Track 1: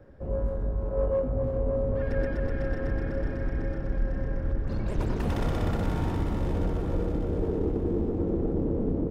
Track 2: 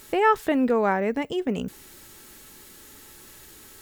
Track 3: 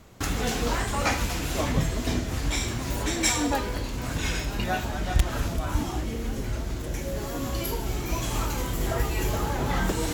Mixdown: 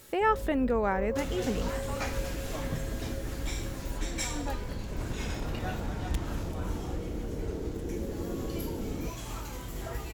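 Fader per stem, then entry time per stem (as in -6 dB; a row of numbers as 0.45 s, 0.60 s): -8.5 dB, -6.0 dB, -10.5 dB; 0.00 s, 0.00 s, 0.95 s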